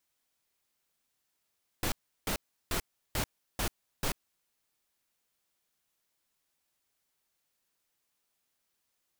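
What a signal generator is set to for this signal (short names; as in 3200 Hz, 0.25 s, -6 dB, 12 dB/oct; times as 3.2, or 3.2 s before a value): noise bursts pink, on 0.09 s, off 0.35 s, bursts 6, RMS -31 dBFS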